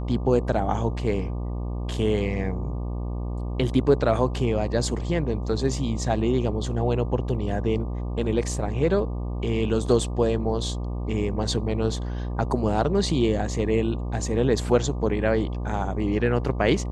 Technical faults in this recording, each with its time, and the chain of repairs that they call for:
buzz 60 Hz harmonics 20 -29 dBFS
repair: de-hum 60 Hz, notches 20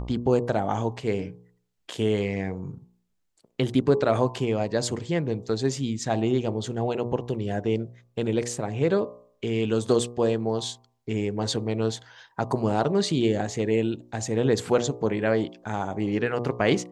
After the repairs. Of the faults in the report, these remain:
nothing left

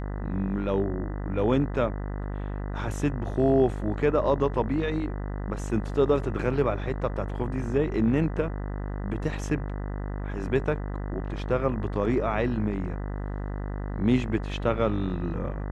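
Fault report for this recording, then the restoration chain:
buzz 50 Hz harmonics 40 -32 dBFS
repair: de-hum 50 Hz, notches 40

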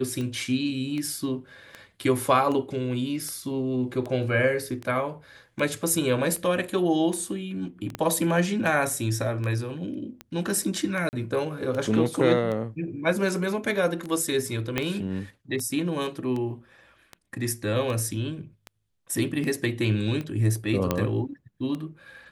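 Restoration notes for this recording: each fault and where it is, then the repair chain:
tick 78 rpm -21 dBFS
7.95 s: pop -16 dBFS
11.09–11.13 s: dropout 39 ms
14.78 s: pop -10 dBFS
20.91 s: pop -9 dBFS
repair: de-click; interpolate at 11.09 s, 39 ms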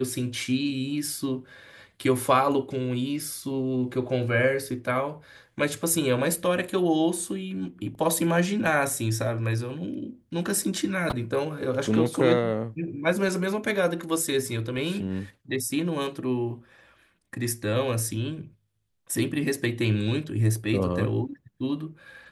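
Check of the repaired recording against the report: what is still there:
7.95 s: pop
14.78 s: pop

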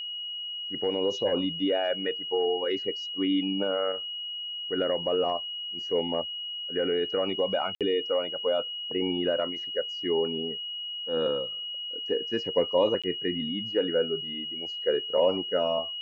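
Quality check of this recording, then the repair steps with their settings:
whine 2.9 kHz -33 dBFS
7.75–7.81 s: dropout 57 ms
13.02–13.04 s: dropout 16 ms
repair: band-stop 2.9 kHz, Q 30; interpolate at 7.75 s, 57 ms; interpolate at 13.02 s, 16 ms

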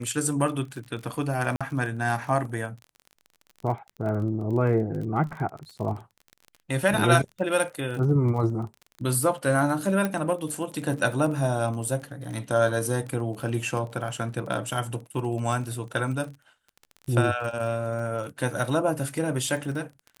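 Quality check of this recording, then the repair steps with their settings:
crackle 30 per s -34 dBFS
1.56–1.61 s: dropout 46 ms
10.05 s: pop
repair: de-click; interpolate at 1.56 s, 46 ms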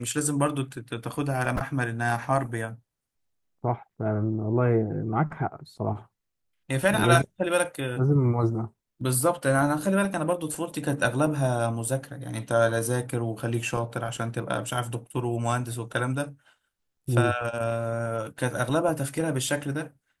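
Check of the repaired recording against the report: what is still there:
nothing left

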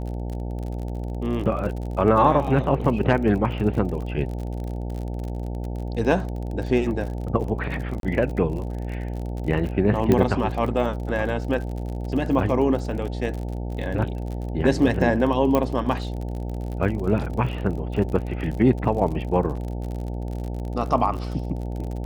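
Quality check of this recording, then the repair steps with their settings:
buzz 60 Hz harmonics 15 -29 dBFS
crackle 42 per s -31 dBFS
8.00–8.03 s: dropout 32 ms
10.12 s: pop -8 dBFS
15.55 s: pop -9 dBFS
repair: de-click; de-hum 60 Hz, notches 15; interpolate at 8.00 s, 32 ms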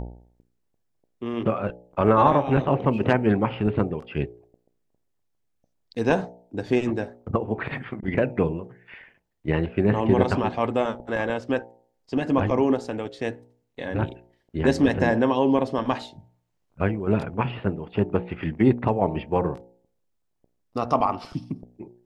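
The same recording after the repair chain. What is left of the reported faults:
nothing left

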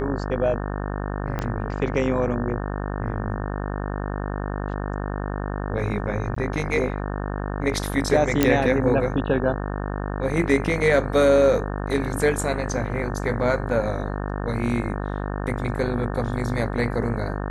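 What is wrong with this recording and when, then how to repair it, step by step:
buzz 50 Hz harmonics 36 -28 dBFS
1.39 s: pop -13 dBFS
6.35–6.36 s: dropout 14 ms
8.43 s: pop -3 dBFS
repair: de-click; de-hum 50 Hz, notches 36; interpolate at 6.35 s, 14 ms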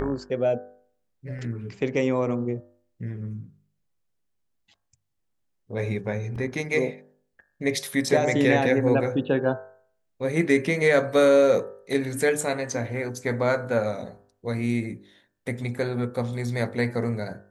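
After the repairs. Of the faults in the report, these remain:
1.39 s: pop

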